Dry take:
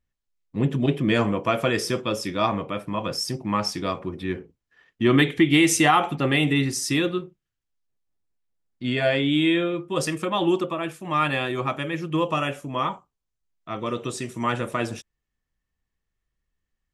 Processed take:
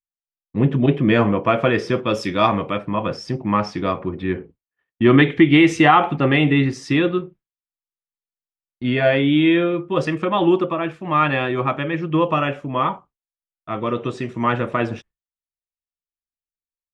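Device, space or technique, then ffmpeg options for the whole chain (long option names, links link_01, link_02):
hearing-loss simulation: -filter_complex "[0:a]asettb=1/sr,asplit=3[link_01][link_02][link_03];[link_01]atrim=end=2.094[link_04];[link_02]atrim=start=2.09:end=2.78,asetpts=PTS-STARTPTS,afade=type=in:duration=0.004:curve=qsin,afade=type=out:start_time=0.686:duration=0.004:curve=qsin,aemphasis=mode=production:type=75kf[link_05];[link_03]atrim=start=2.776[link_06];[link_04][link_05]acrossfade=duration=0.004:curve1=hsin:curve2=qsin[link_07];[link_07][link_06]acrossfade=duration=0.004:curve1=qsin:curve2=hsin,lowpass=2600,agate=range=-33dB:threshold=-44dB:ratio=3:detection=peak,volume=5.5dB"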